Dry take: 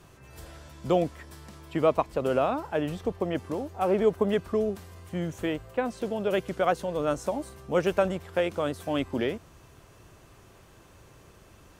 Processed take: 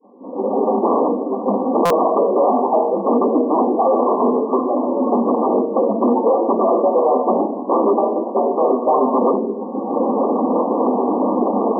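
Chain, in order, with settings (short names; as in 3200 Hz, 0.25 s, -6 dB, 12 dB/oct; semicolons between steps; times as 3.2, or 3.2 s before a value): median-filter separation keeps percussive; recorder AGC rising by 40 dB/s; low shelf 470 Hz +8.5 dB; gate -47 dBFS, range -11 dB; in parallel at 0 dB: compressor, threshold -36 dBFS, peak gain reduction 23.5 dB; on the sum: reverb RT60 1.0 s, pre-delay 3 ms, DRR -5 dB; wavefolder -0.5 dBFS; brick-wall FIR band-pass 210–1200 Hz; stuck buffer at 1.85, samples 256, times 8; gain -7.5 dB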